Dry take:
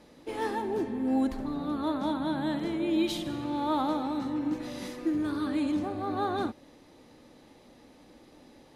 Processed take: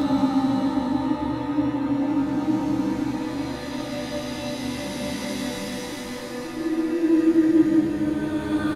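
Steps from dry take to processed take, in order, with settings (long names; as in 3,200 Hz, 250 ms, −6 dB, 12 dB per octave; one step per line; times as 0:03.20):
extreme stretch with random phases 8.3×, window 0.25 s, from 0:04.20
double-tracking delay 15 ms −5 dB
level +8.5 dB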